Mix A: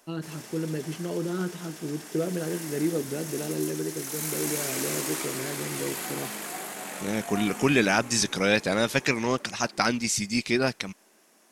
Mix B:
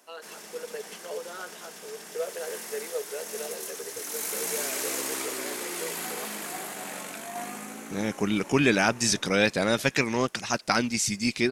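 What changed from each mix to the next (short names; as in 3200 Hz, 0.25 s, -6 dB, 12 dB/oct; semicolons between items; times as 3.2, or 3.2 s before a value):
first voice: add Chebyshev high-pass 430 Hz, order 6; second voice: entry +0.90 s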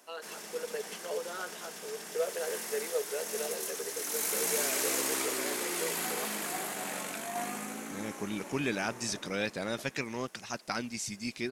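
second voice -10.5 dB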